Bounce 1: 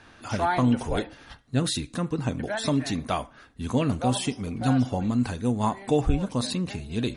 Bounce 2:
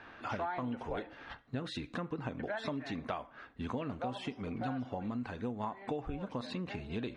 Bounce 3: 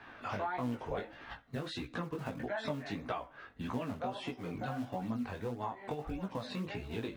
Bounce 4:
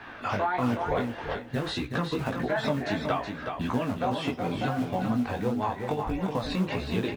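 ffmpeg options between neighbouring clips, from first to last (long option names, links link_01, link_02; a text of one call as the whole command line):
ffmpeg -i in.wav -af "lowpass=2400,lowshelf=frequency=240:gain=-11,acompressor=threshold=-37dB:ratio=6,volume=2dB" out.wav
ffmpeg -i in.wav -filter_complex "[0:a]flanger=delay=0.9:depth=1.7:regen=-68:speed=0.8:shape=triangular,acrossover=split=170|3100[link_01][link_02][link_03];[link_01]acrusher=samples=32:mix=1:aa=0.000001:lfo=1:lforange=51.2:lforate=1.9[link_04];[link_04][link_02][link_03]amix=inputs=3:normalize=0,flanger=delay=16:depth=5:speed=1.6,volume=7.5dB" out.wav
ffmpeg -i in.wav -af "aecho=1:1:372|744|1116:0.501|0.1|0.02,volume=9dB" out.wav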